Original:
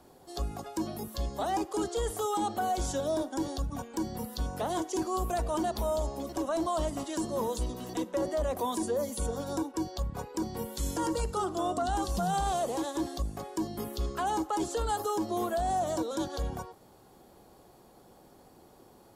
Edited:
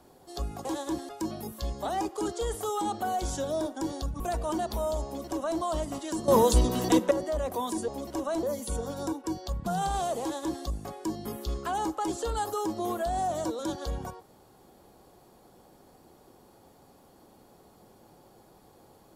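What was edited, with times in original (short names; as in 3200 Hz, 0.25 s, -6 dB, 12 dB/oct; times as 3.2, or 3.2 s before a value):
3.76–5.25 cut
6.1–6.65 copy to 8.93
7.33–8.16 gain +11 dB
10.16–12.18 cut
12.73–13.17 copy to 0.65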